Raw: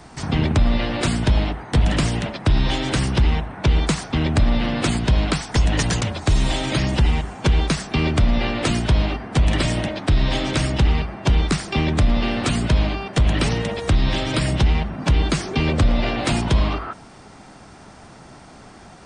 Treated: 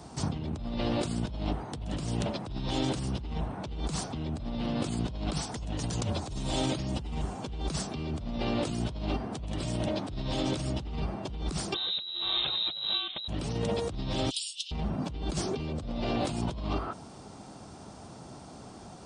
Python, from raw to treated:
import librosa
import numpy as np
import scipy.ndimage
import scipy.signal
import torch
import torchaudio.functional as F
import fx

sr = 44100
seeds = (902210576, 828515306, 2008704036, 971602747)

y = fx.freq_invert(x, sr, carrier_hz=3900, at=(11.74, 13.28))
y = fx.steep_highpass(y, sr, hz=2800.0, slope=72, at=(14.29, 14.71), fade=0.02)
y = scipy.signal.sosfilt(scipy.signal.butter(2, 58.0, 'highpass', fs=sr, output='sos'), y)
y = fx.peak_eq(y, sr, hz=1900.0, db=-11.5, octaves=1.1)
y = fx.over_compress(y, sr, threshold_db=-26.0, ratio=-1.0)
y = F.gain(torch.from_numpy(y), -6.5).numpy()